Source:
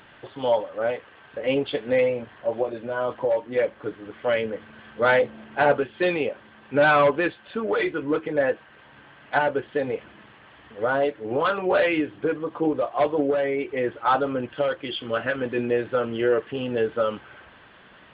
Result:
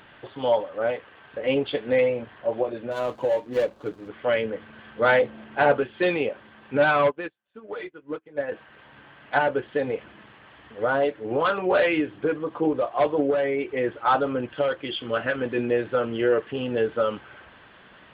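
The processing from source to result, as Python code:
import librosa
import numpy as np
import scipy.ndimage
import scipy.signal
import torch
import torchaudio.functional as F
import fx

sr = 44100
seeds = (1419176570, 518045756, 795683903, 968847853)

y = fx.median_filter(x, sr, points=25, at=(2.91, 4.09))
y = fx.upward_expand(y, sr, threshold_db=-39.0, expansion=2.5, at=(6.77, 8.52))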